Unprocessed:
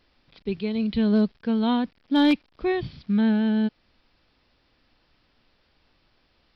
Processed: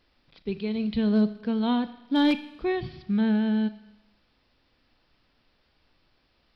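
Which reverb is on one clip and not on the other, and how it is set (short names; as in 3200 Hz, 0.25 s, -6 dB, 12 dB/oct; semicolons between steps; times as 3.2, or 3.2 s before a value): Schroeder reverb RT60 0.98 s, combs from 26 ms, DRR 13 dB; gain -2.5 dB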